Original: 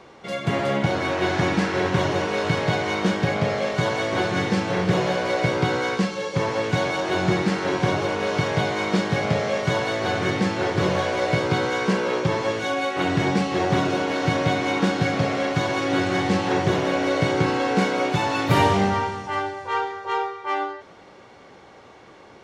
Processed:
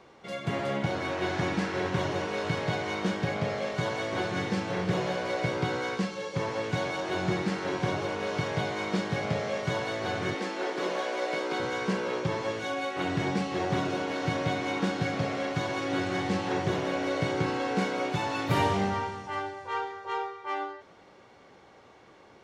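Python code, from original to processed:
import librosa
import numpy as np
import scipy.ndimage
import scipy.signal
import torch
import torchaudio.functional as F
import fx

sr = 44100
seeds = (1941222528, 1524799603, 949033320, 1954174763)

y = fx.highpass(x, sr, hz=260.0, slope=24, at=(10.34, 11.6))
y = F.gain(torch.from_numpy(y), -7.5).numpy()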